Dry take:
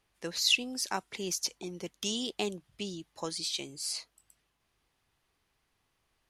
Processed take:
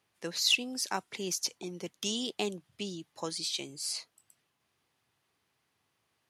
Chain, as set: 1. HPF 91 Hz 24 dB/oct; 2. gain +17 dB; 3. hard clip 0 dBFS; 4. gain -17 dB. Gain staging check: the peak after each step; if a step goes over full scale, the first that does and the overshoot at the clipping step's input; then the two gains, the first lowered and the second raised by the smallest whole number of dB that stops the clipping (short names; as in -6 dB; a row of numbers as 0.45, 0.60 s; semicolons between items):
-12.5, +4.5, 0.0, -17.0 dBFS; step 2, 4.5 dB; step 2 +12 dB, step 4 -12 dB